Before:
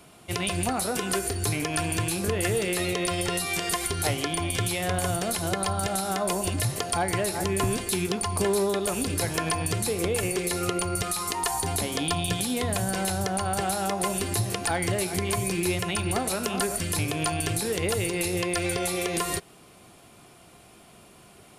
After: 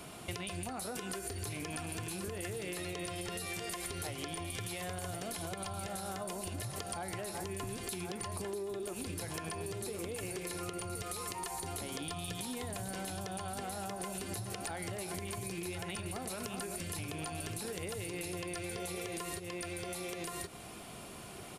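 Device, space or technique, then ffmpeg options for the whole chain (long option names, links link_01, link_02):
serial compression, peaks first: -filter_complex "[0:a]asettb=1/sr,asplit=3[link_01][link_02][link_03];[link_01]atrim=end=8.534[link_04];[link_02]atrim=start=8.53:end=8.93,asetpts=PTS-STARTPTS,afade=type=in:duration=0.004:curve=qsin,afade=type=out:start_time=0.396:duration=0.004:curve=qsin,equalizer=frequency=360:width=3.9:gain=12.5[link_05];[link_03]atrim=start=8.926[link_06];[link_04][link_05]acrossfade=duration=0.004:curve1=hsin:curve2=qsin[link_07];[link_07][link_06]acrossfade=duration=0.004:curve1=qsin:curve2=hsin,aecho=1:1:1073:0.335,acompressor=threshold=-36dB:ratio=6,acompressor=threshold=-43dB:ratio=2.5,volume=3.5dB"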